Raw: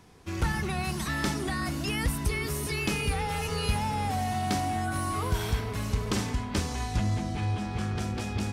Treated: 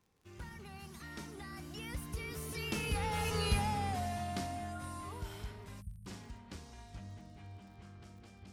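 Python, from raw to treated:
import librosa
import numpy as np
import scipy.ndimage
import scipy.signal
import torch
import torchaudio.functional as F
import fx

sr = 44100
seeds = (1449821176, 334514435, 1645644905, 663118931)

y = fx.doppler_pass(x, sr, speed_mps=19, closest_m=9.1, pass_at_s=3.4)
y = fx.spec_erase(y, sr, start_s=5.81, length_s=0.26, low_hz=210.0, high_hz=8200.0)
y = fx.dmg_crackle(y, sr, seeds[0], per_s=34.0, level_db=-52.0)
y = y * librosa.db_to_amplitude(-3.5)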